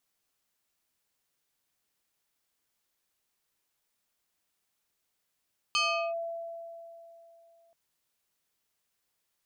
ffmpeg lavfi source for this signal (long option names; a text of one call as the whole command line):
ffmpeg -f lavfi -i "aevalsrc='0.0708*pow(10,-3*t/3.05)*sin(2*PI*671*t+2.5*clip(1-t/0.39,0,1)*sin(2*PI*2.8*671*t))':duration=1.98:sample_rate=44100" out.wav